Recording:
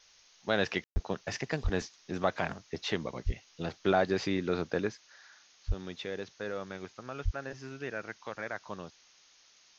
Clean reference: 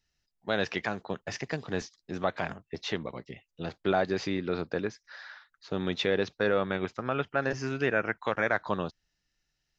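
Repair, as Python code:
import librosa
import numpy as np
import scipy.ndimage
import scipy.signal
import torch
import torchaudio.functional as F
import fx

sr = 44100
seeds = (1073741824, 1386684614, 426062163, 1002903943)

y = fx.fix_deplosive(x, sr, at_s=(0.93, 1.63, 3.25, 5.67, 7.24))
y = fx.fix_ambience(y, sr, seeds[0], print_start_s=9.06, print_end_s=9.56, start_s=0.84, end_s=0.96)
y = fx.noise_reduce(y, sr, print_start_s=9.06, print_end_s=9.56, reduce_db=17.0)
y = fx.fix_level(y, sr, at_s=5.0, step_db=11.0)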